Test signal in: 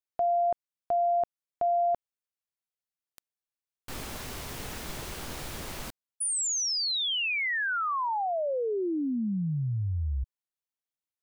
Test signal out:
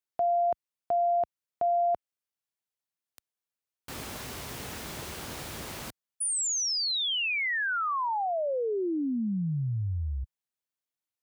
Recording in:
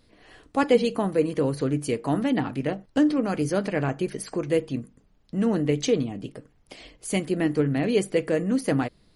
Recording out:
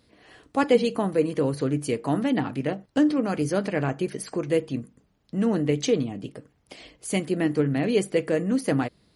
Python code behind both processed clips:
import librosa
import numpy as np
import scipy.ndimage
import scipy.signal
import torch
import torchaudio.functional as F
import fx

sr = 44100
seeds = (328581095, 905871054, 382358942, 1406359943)

y = scipy.signal.sosfilt(scipy.signal.butter(2, 64.0, 'highpass', fs=sr, output='sos'), x)